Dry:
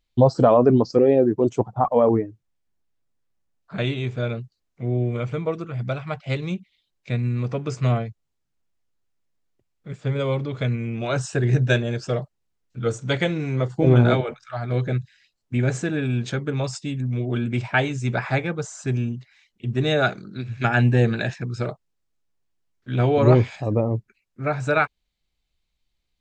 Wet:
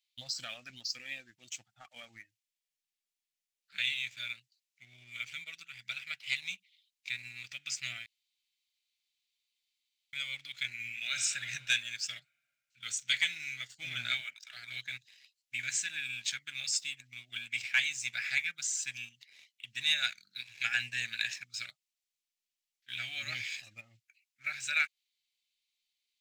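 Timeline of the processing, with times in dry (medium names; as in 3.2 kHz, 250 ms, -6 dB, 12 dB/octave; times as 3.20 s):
8.06–10.13 s: room tone
10.67–11.16 s: reverb throw, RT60 2.6 s, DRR 3.5 dB
whole clip: inverse Chebyshev high-pass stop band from 1.1 kHz, stop band 40 dB; dynamic bell 3.3 kHz, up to -4 dB, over -44 dBFS, Q 1.5; waveshaping leveller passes 1; trim +1.5 dB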